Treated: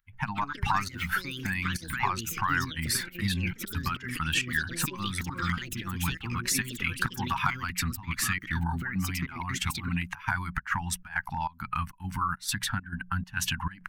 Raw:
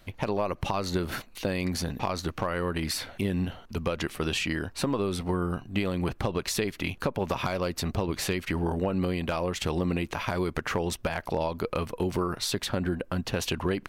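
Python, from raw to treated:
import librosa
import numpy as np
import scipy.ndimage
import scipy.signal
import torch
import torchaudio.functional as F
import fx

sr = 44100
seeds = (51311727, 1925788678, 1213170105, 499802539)

y = fx.bin_expand(x, sr, power=1.5)
y = scipy.signal.sosfilt(scipy.signal.cheby1(3, 1.0, [250.0, 860.0], 'bandstop', fs=sr, output='sos'), y)
y = fx.hum_notches(y, sr, base_hz=60, count=3)
y = fx.volume_shaper(y, sr, bpm=136, per_beat=1, depth_db=-19, release_ms=128.0, shape='slow start')
y = fx.graphic_eq_15(y, sr, hz=(250, 1600, 4000, 10000), db=(-8, 8, -5, 3))
y = fx.echo_pitch(y, sr, ms=218, semitones=6, count=2, db_per_echo=-6.0)
y = y * librosa.db_to_amplitude(6.0)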